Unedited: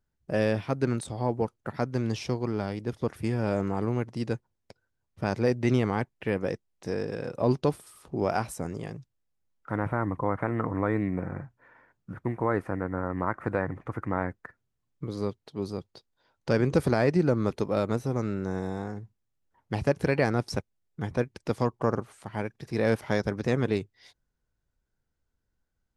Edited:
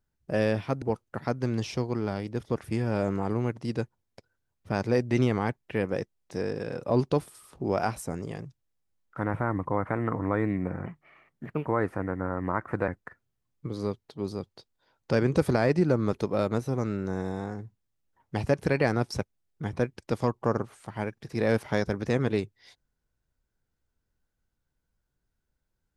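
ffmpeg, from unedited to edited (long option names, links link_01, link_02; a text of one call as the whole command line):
ffmpeg -i in.wav -filter_complex "[0:a]asplit=5[link_01][link_02][link_03][link_04][link_05];[link_01]atrim=end=0.822[link_06];[link_02]atrim=start=1.338:end=11.384[link_07];[link_03]atrim=start=11.38:end=12.39,asetpts=PTS-STARTPTS,asetrate=55566,aresample=44100[link_08];[link_04]atrim=start=12.386:end=13.612[link_09];[link_05]atrim=start=14.258[link_10];[link_06][link_07]acrossfade=duration=0.004:curve1=hsin:curve2=hsin[link_11];[link_11][link_08]acrossfade=duration=0.004:curve1=hsin:curve2=hsin[link_12];[link_12][link_09]acrossfade=duration=0.004:curve1=hsin:curve2=hsin[link_13];[link_13][link_10]acrossfade=duration=0.004:curve1=hsin:curve2=hsin" out.wav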